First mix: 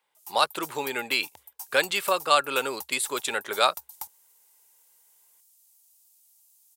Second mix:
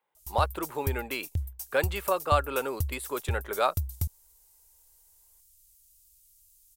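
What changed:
speech: add parametric band 5,800 Hz −15 dB 2.8 octaves
background: remove high-pass with resonance 890 Hz, resonance Q 9

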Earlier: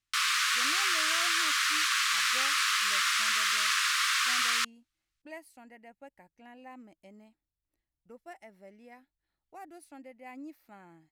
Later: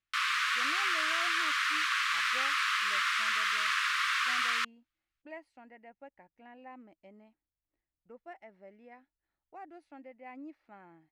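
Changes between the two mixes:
speech: add high-frequency loss of the air 82 metres
master: add bass and treble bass −5 dB, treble −13 dB

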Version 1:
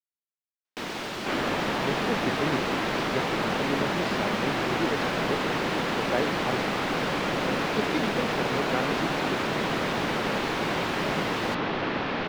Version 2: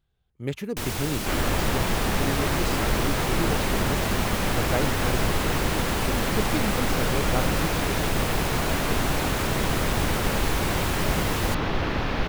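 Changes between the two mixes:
speech: entry −1.40 s
master: remove three-way crossover with the lows and the highs turned down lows −23 dB, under 150 Hz, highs −18 dB, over 5,200 Hz

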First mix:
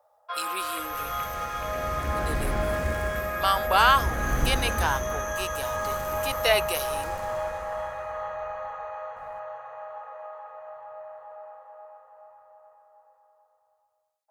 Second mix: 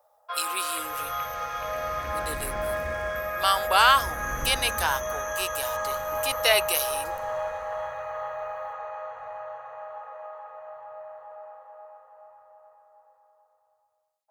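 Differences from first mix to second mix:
speech: add spectral tilt +2 dB per octave
second sound −9.0 dB

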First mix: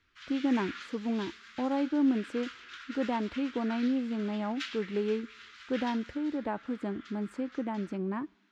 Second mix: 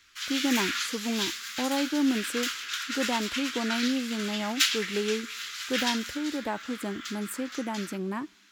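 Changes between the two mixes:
background +6.0 dB
master: remove head-to-tape spacing loss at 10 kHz 28 dB

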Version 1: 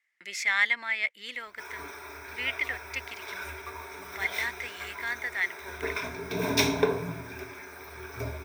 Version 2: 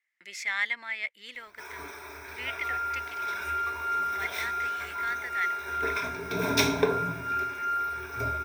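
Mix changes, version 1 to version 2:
speech −4.5 dB
second sound: unmuted

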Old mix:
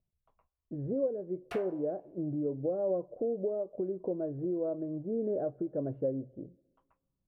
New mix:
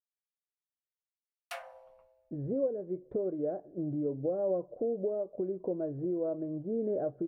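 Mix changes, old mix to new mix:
speech: entry +1.60 s
master: add high-shelf EQ 3,800 Hz +11 dB

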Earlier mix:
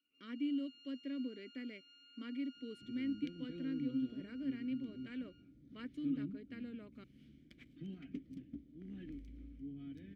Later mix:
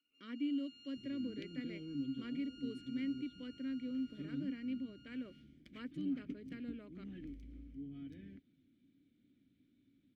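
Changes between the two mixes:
first sound: remove high-frequency loss of the air 77 metres
second sound: entry −1.85 s

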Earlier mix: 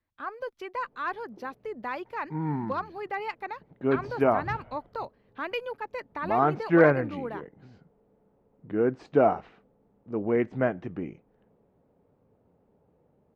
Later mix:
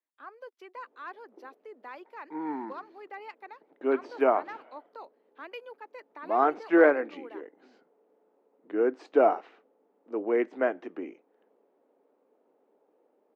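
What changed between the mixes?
speech −10.0 dB
master: add Butterworth high-pass 280 Hz 36 dB per octave

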